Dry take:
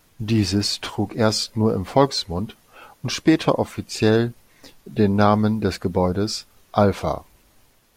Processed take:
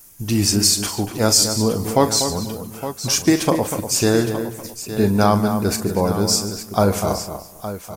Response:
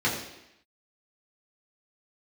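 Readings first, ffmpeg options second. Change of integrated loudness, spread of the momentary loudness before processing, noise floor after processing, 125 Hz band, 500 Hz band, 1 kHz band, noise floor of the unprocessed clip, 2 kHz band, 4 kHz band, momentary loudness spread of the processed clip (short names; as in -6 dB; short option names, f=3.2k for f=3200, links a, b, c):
+2.5 dB, 10 LU, -41 dBFS, +1.0 dB, +1.0 dB, +1.0 dB, -59 dBFS, +1.0 dB, +5.5 dB, 14 LU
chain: -filter_complex "[0:a]asplit=2[a][b];[b]aecho=0:1:40|145|864:0.266|0.15|0.251[c];[a][c]amix=inputs=2:normalize=0,aexciter=amount=7.5:drive=2.5:freq=5.5k,asplit=2[d][e];[e]adelay=243,lowpass=f=2.4k:p=1,volume=-8.5dB,asplit=2[f][g];[g]adelay=243,lowpass=f=2.4k:p=1,volume=0.17,asplit=2[h][i];[i]adelay=243,lowpass=f=2.4k:p=1,volume=0.17[j];[f][h][j]amix=inputs=3:normalize=0[k];[d][k]amix=inputs=2:normalize=0"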